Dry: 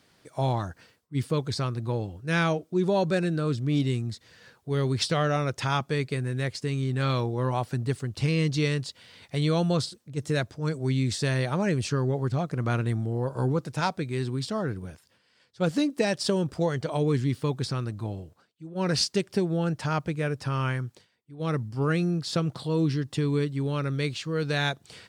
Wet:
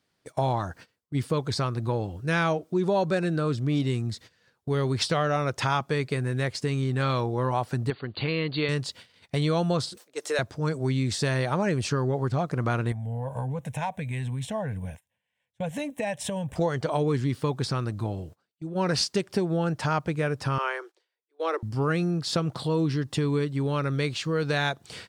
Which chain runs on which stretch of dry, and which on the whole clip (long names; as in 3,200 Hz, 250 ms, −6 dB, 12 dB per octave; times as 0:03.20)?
0:07.90–0:08.69: linear-phase brick-wall low-pass 4,700 Hz + parametric band 73 Hz −12 dB 2.7 octaves
0:09.97–0:10.39: high-pass filter 430 Hz 24 dB per octave + upward compression, threshold −41 dBFS
0:12.92–0:16.56: phaser with its sweep stopped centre 1,300 Hz, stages 6 + downward compressor 3 to 1, threshold −33 dBFS
0:20.58–0:21.63: Butterworth high-pass 330 Hz 96 dB per octave + high-shelf EQ 8,300 Hz −11.5 dB
whole clip: noise gate −48 dBFS, range −19 dB; dynamic equaliser 920 Hz, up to +5 dB, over −40 dBFS, Q 0.71; downward compressor 2 to 1, threshold −35 dBFS; level +6.5 dB